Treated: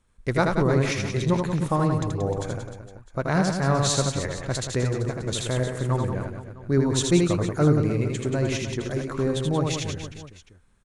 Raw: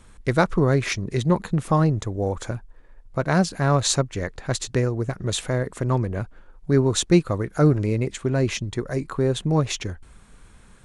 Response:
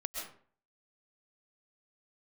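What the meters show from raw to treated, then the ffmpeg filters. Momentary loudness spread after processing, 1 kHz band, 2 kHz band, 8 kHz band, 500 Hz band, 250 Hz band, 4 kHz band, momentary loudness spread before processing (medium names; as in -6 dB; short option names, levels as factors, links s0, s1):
11 LU, -1.5 dB, -1.5 dB, -1.5 dB, -1.5 dB, -1.5 dB, -1.5 dB, 11 LU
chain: -af "agate=range=0.2:threshold=0.00708:ratio=16:detection=peak,aecho=1:1:80|180|305|461.2|656.6:0.631|0.398|0.251|0.158|0.1,volume=0.668"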